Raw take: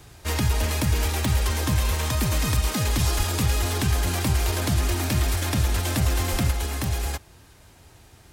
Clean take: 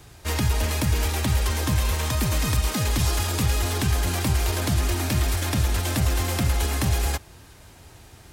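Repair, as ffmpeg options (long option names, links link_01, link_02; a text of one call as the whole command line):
ffmpeg -i in.wav -filter_complex "[0:a]adeclick=threshold=4,asplit=3[link_01][link_02][link_03];[link_01]afade=type=out:start_time=3.17:duration=0.02[link_04];[link_02]highpass=frequency=140:width=0.5412,highpass=frequency=140:width=1.3066,afade=type=in:start_time=3.17:duration=0.02,afade=type=out:start_time=3.29:duration=0.02[link_05];[link_03]afade=type=in:start_time=3.29:duration=0.02[link_06];[link_04][link_05][link_06]amix=inputs=3:normalize=0,asplit=3[link_07][link_08][link_09];[link_07]afade=type=out:start_time=6.31:duration=0.02[link_10];[link_08]highpass=frequency=140:width=0.5412,highpass=frequency=140:width=1.3066,afade=type=in:start_time=6.31:duration=0.02,afade=type=out:start_time=6.43:duration=0.02[link_11];[link_09]afade=type=in:start_time=6.43:duration=0.02[link_12];[link_10][link_11][link_12]amix=inputs=3:normalize=0,asetnsamples=nb_out_samples=441:pad=0,asendcmd='6.51 volume volume 3.5dB',volume=0dB" out.wav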